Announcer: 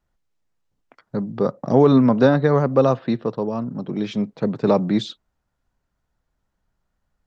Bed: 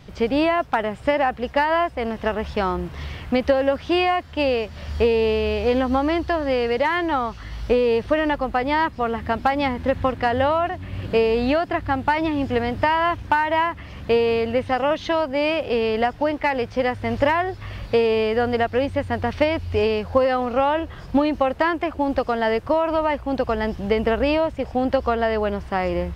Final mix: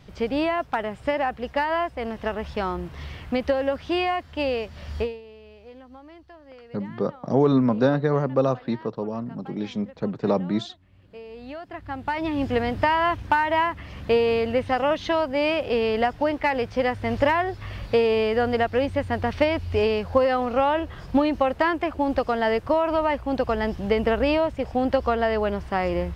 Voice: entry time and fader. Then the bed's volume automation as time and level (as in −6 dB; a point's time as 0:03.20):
5.60 s, −5.0 dB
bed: 0:05.00 −4.5 dB
0:05.22 −25.5 dB
0:11.06 −25.5 dB
0:12.42 −1.5 dB